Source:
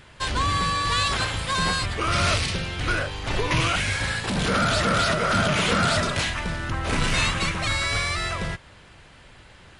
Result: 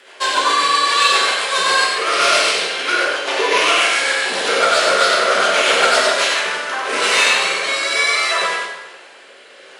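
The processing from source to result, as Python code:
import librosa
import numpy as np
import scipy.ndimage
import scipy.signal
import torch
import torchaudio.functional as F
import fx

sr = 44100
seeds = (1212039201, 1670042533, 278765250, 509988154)

p1 = scipy.signal.sosfilt(scipy.signal.butter(4, 410.0, 'highpass', fs=sr, output='sos'), x)
p2 = fx.rider(p1, sr, range_db=10, speed_s=2.0)
p3 = p1 + (p2 * librosa.db_to_amplitude(-1.0))
p4 = fx.rotary_switch(p3, sr, hz=7.5, then_hz=0.6, switch_at_s=6.26)
p5 = 10.0 ** (-9.0 / 20.0) * np.tanh(p4 / 10.0 ** (-9.0 / 20.0))
p6 = p5 + fx.echo_single(p5, sr, ms=95, db=-4.5, dry=0)
p7 = fx.rev_plate(p6, sr, seeds[0], rt60_s=1.0, hf_ratio=0.8, predelay_ms=0, drr_db=-2.5)
y = p7 * librosa.db_to_amplitude(1.5)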